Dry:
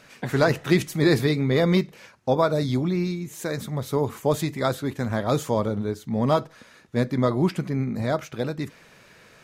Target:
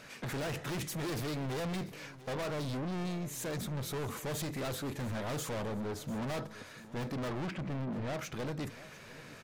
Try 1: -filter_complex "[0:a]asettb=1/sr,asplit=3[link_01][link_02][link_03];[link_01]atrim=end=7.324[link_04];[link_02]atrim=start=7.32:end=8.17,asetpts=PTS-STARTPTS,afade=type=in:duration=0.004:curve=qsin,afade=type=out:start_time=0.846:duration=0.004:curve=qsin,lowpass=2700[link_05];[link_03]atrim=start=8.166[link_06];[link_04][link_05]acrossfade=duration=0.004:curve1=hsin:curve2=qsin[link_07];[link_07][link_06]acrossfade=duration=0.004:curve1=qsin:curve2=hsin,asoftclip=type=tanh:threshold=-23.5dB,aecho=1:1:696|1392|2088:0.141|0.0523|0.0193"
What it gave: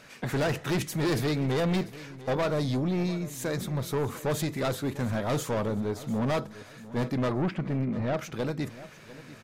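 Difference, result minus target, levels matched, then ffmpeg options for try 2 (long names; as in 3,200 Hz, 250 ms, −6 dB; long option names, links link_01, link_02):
soft clipping: distortion −5 dB
-filter_complex "[0:a]asettb=1/sr,asplit=3[link_01][link_02][link_03];[link_01]atrim=end=7.324[link_04];[link_02]atrim=start=7.32:end=8.17,asetpts=PTS-STARTPTS,afade=type=in:duration=0.004:curve=qsin,afade=type=out:start_time=0.846:duration=0.004:curve=qsin,lowpass=2700[link_05];[link_03]atrim=start=8.166[link_06];[link_04][link_05]acrossfade=duration=0.004:curve1=hsin:curve2=qsin[link_07];[link_07][link_06]acrossfade=duration=0.004:curve1=qsin:curve2=hsin,asoftclip=type=tanh:threshold=-35dB,aecho=1:1:696|1392|2088:0.141|0.0523|0.0193"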